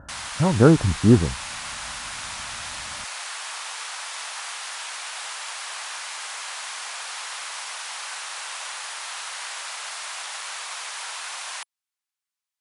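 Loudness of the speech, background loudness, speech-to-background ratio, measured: -18.5 LUFS, -31.5 LUFS, 13.0 dB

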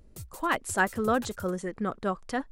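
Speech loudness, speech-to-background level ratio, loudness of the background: -29.5 LUFS, 16.5 dB, -46.0 LUFS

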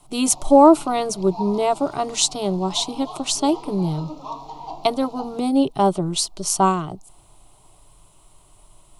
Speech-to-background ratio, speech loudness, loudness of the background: 17.5 dB, -20.0 LUFS, -37.5 LUFS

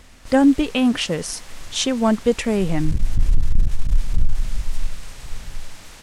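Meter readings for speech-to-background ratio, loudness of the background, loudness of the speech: 8.0 dB, -28.0 LUFS, -20.0 LUFS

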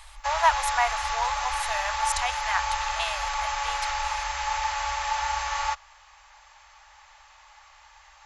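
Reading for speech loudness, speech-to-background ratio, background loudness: -29.5 LUFS, -1.5 dB, -28.0 LUFS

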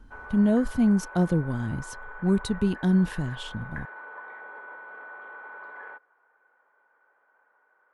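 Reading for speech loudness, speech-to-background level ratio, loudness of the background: -25.0 LUFS, 17.0 dB, -42.0 LUFS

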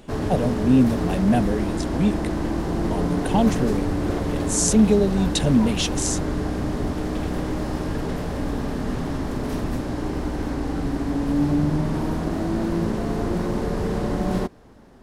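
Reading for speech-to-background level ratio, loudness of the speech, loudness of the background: 3.5 dB, -22.0 LUFS, -25.5 LUFS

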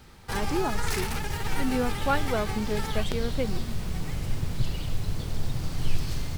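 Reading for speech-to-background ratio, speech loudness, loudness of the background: 0.5 dB, -32.0 LUFS, -32.5 LUFS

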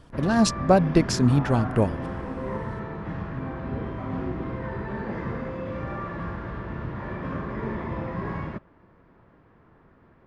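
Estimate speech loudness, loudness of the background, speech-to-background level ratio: -22.0 LUFS, -32.5 LUFS, 10.5 dB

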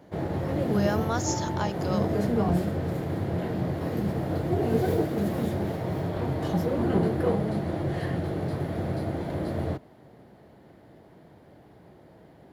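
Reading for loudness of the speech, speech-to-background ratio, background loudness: -32.0 LUFS, -3.5 dB, -28.5 LUFS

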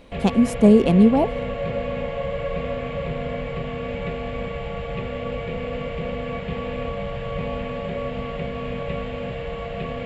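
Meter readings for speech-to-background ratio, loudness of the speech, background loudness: 12.0 dB, -17.0 LUFS, -29.0 LUFS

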